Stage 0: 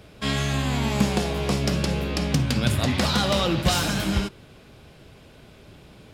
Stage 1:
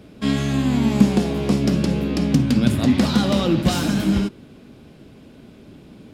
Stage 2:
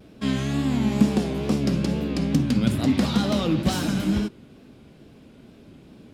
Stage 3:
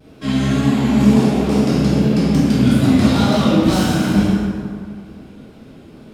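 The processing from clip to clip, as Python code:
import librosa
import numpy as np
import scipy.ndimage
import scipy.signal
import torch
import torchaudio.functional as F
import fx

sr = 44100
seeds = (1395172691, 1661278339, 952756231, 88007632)

y1 = fx.peak_eq(x, sr, hz=250.0, db=13.5, octaves=1.3)
y1 = y1 * 10.0 ** (-2.5 / 20.0)
y2 = fx.wow_flutter(y1, sr, seeds[0], rate_hz=2.1, depth_cents=80.0)
y2 = y2 * 10.0 ** (-4.0 / 20.0)
y3 = fx.rev_plate(y2, sr, seeds[1], rt60_s=2.1, hf_ratio=0.55, predelay_ms=0, drr_db=-9.0)
y3 = y3 * 10.0 ** (-1.0 / 20.0)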